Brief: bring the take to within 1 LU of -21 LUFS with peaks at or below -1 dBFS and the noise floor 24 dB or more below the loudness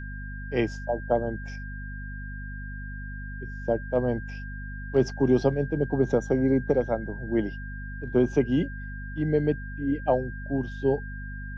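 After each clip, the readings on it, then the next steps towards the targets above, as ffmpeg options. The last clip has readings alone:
hum 50 Hz; harmonics up to 250 Hz; hum level -34 dBFS; steady tone 1600 Hz; tone level -41 dBFS; loudness -27.0 LUFS; peak -9.5 dBFS; loudness target -21.0 LUFS
-> -af "bandreject=f=50:t=h:w=6,bandreject=f=100:t=h:w=6,bandreject=f=150:t=h:w=6,bandreject=f=200:t=h:w=6,bandreject=f=250:t=h:w=6"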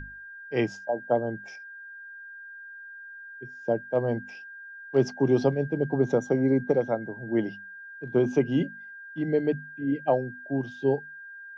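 hum none; steady tone 1600 Hz; tone level -41 dBFS
-> -af "bandreject=f=1.6k:w=30"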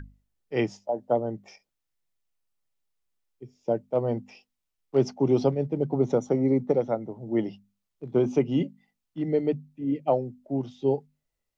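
steady tone none; loudness -27.5 LUFS; peak -10.0 dBFS; loudness target -21.0 LUFS
-> -af "volume=6.5dB"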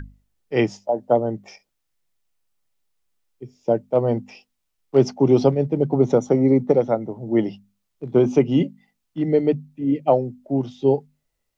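loudness -21.0 LUFS; peak -3.5 dBFS; noise floor -76 dBFS

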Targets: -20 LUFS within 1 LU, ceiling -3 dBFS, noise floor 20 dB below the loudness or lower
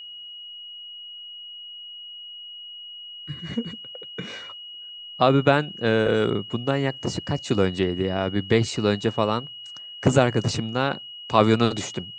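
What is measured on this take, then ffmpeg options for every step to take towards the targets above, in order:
steady tone 2900 Hz; tone level -37 dBFS; loudness -23.5 LUFS; peak -2.5 dBFS; loudness target -20.0 LUFS
-> -af "bandreject=f=2.9k:w=30"
-af "volume=3.5dB,alimiter=limit=-3dB:level=0:latency=1"

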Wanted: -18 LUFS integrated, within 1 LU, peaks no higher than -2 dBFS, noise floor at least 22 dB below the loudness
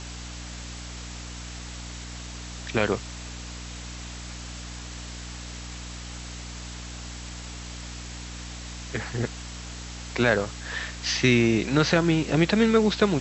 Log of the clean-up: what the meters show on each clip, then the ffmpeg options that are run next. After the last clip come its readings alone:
hum 60 Hz; harmonics up to 300 Hz; hum level -37 dBFS; noise floor -38 dBFS; noise floor target -50 dBFS; loudness -28.0 LUFS; peak -5.0 dBFS; loudness target -18.0 LUFS
-> -af "bandreject=f=60:t=h:w=4,bandreject=f=120:t=h:w=4,bandreject=f=180:t=h:w=4,bandreject=f=240:t=h:w=4,bandreject=f=300:t=h:w=4"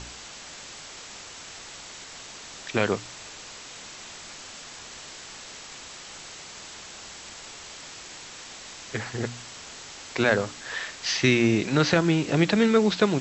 hum none; noise floor -43 dBFS; noise floor target -46 dBFS
-> -af "afftdn=nr=6:nf=-43"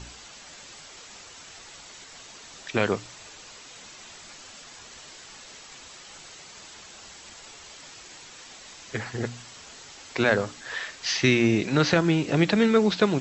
noise floor -47 dBFS; loudness -24.0 LUFS; peak -5.5 dBFS; loudness target -18.0 LUFS
-> -af "volume=6dB,alimiter=limit=-2dB:level=0:latency=1"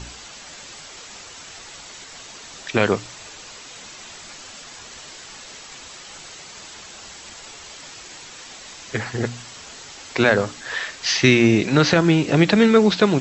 loudness -18.5 LUFS; peak -2.0 dBFS; noise floor -41 dBFS

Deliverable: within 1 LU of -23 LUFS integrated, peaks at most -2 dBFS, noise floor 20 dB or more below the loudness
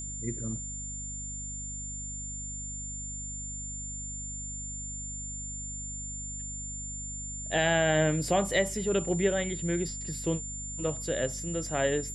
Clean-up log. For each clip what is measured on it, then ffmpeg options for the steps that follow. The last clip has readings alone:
hum 50 Hz; harmonics up to 250 Hz; hum level -40 dBFS; steady tone 7200 Hz; tone level -37 dBFS; loudness -31.5 LUFS; peak -13.0 dBFS; loudness target -23.0 LUFS
-> -af "bandreject=f=50:t=h:w=4,bandreject=f=100:t=h:w=4,bandreject=f=150:t=h:w=4,bandreject=f=200:t=h:w=4,bandreject=f=250:t=h:w=4"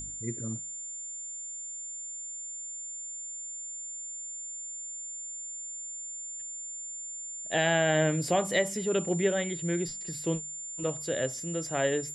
hum none; steady tone 7200 Hz; tone level -37 dBFS
-> -af "bandreject=f=7.2k:w=30"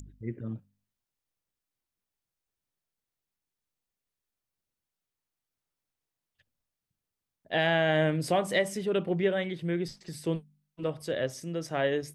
steady tone none; loudness -30.0 LUFS; peak -13.0 dBFS; loudness target -23.0 LUFS
-> -af "volume=7dB"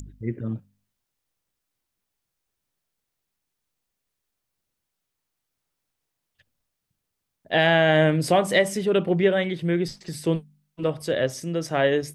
loudness -23.0 LUFS; peak -6.0 dBFS; noise floor -82 dBFS

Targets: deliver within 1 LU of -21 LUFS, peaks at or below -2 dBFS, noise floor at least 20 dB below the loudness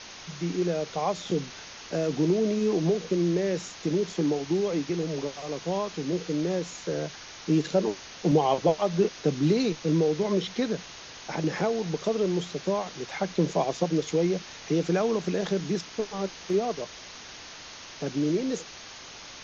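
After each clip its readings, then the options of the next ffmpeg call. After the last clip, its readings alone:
noise floor -44 dBFS; noise floor target -48 dBFS; loudness -28.0 LUFS; peak -10.5 dBFS; loudness target -21.0 LUFS
-> -af "afftdn=nr=6:nf=-44"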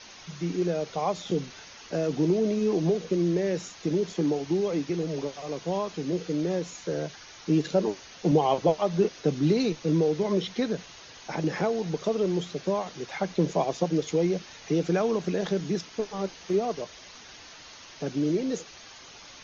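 noise floor -48 dBFS; loudness -28.0 LUFS; peak -10.5 dBFS; loudness target -21.0 LUFS
-> -af "volume=7dB"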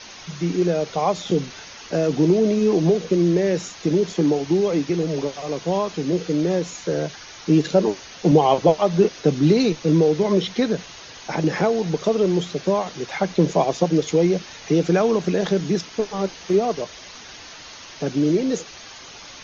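loudness -21.0 LUFS; peak -3.5 dBFS; noise floor -41 dBFS

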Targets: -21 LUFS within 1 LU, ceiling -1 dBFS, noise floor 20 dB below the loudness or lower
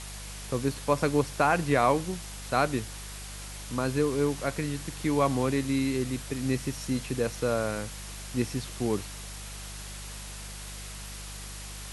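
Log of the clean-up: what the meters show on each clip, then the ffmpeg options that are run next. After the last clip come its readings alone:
hum 50 Hz; harmonics up to 200 Hz; hum level -40 dBFS; noise floor -41 dBFS; noise floor target -50 dBFS; loudness -30.0 LUFS; peak -10.5 dBFS; loudness target -21.0 LUFS
-> -af "bandreject=f=50:t=h:w=4,bandreject=f=100:t=h:w=4,bandreject=f=150:t=h:w=4,bandreject=f=200:t=h:w=4"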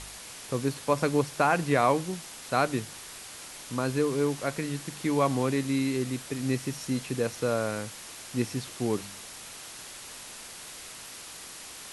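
hum none; noise floor -44 dBFS; noise floor target -49 dBFS
-> -af "afftdn=nr=6:nf=-44"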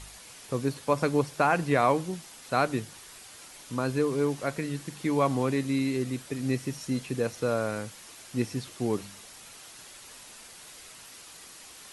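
noise floor -49 dBFS; loudness -29.0 LUFS; peak -10.5 dBFS; loudness target -21.0 LUFS
-> -af "volume=8dB"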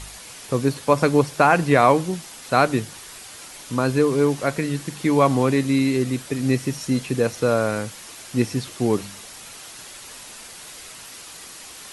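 loudness -21.0 LUFS; peak -2.5 dBFS; noise floor -41 dBFS

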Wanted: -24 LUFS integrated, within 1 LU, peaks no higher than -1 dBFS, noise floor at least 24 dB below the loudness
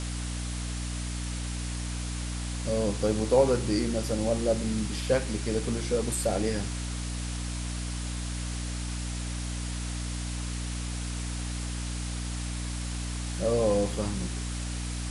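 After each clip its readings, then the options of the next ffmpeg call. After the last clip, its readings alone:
hum 60 Hz; harmonics up to 300 Hz; hum level -31 dBFS; noise floor -34 dBFS; noise floor target -55 dBFS; loudness -30.5 LUFS; peak -10.0 dBFS; loudness target -24.0 LUFS
-> -af "bandreject=f=60:t=h:w=4,bandreject=f=120:t=h:w=4,bandreject=f=180:t=h:w=4,bandreject=f=240:t=h:w=4,bandreject=f=300:t=h:w=4"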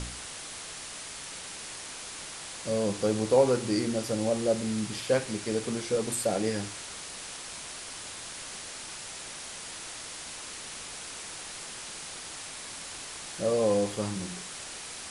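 hum none; noise floor -42 dBFS; noise floor target -56 dBFS
-> -af "afftdn=nr=14:nf=-42"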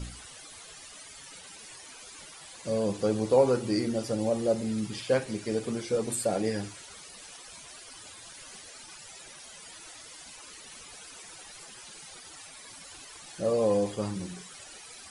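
noise floor -48 dBFS; noise floor target -53 dBFS
-> -af "afftdn=nr=6:nf=-48"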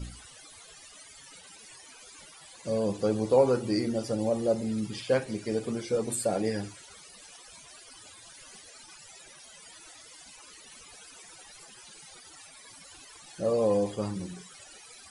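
noise floor -51 dBFS; noise floor target -53 dBFS
-> -af "afftdn=nr=6:nf=-51"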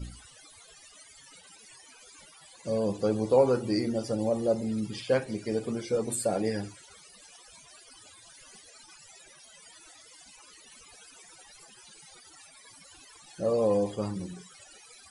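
noise floor -54 dBFS; loudness -29.0 LUFS; peak -10.5 dBFS; loudness target -24.0 LUFS
-> -af "volume=5dB"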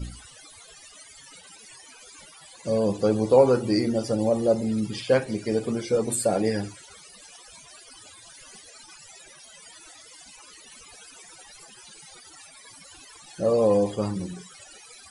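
loudness -24.0 LUFS; peak -5.5 dBFS; noise floor -49 dBFS

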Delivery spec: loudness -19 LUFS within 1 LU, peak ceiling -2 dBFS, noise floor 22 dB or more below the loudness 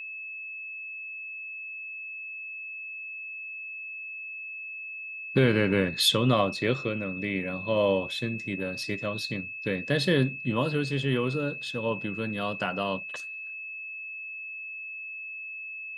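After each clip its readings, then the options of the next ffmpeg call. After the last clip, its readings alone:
steady tone 2600 Hz; tone level -36 dBFS; loudness -29.5 LUFS; peak -9.0 dBFS; loudness target -19.0 LUFS
-> -af "bandreject=f=2.6k:w=30"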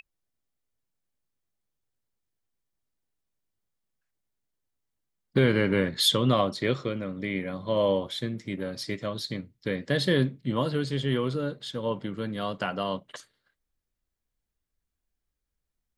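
steady tone none; loudness -28.0 LUFS; peak -9.5 dBFS; loudness target -19.0 LUFS
-> -af "volume=9dB,alimiter=limit=-2dB:level=0:latency=1"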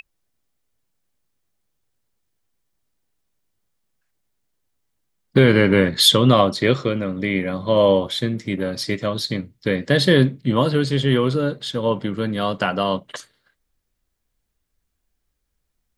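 loudness -19.0 LUFS; peak -2.0 dBFS; noise floor -75 dBFS

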